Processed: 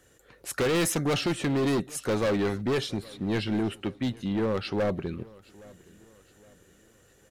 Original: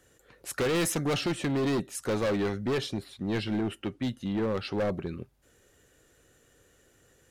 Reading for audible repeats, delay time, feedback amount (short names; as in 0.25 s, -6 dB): 2, 0.817 s, 41%